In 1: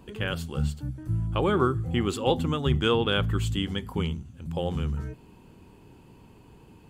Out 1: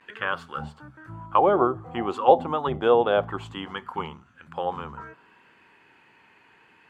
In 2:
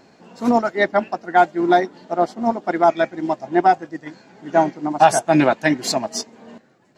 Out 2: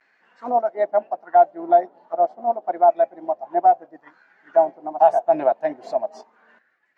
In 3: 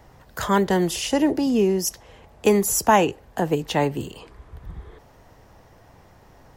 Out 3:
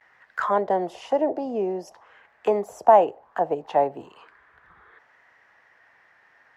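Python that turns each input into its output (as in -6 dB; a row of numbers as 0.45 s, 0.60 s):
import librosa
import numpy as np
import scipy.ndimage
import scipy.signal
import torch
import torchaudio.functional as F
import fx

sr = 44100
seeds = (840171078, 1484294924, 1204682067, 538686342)

y = fx.vibrato(x, sr, rate_hz=0.44, depth_cents=39.0)
y = fx.auto_wah(y, sr, base_hz=670.0, top_hz=1900.0, q=3.8, full_db=-20.0, direction='down')
y = y * 10.0 ** (-3 / 20.0) / np.max(np.abs(y))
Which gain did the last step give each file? +16.0 dB, +2.0 dB, +7.5 dB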